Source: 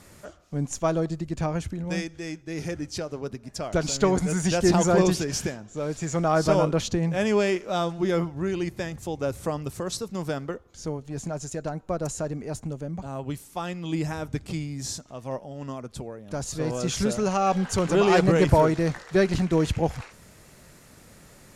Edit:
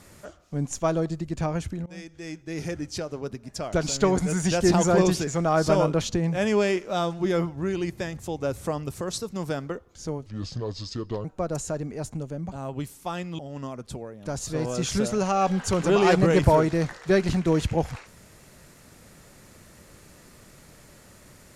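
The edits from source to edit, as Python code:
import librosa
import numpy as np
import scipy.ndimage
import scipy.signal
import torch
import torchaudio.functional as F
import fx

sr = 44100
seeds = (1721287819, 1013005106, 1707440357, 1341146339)

y = fx.edit(x, sr, fx.fade_in_from(start_s=1.86, length_s=0.57, floor_db=-22.0),
    fx.cut(start_s=5.27, length_s=0.79),
    fx.speed_span(start_s=11.05, length_s=0.7, speed=0.71),
    fx.cut(start_s=13.89, length_s=1.55), tone=tone)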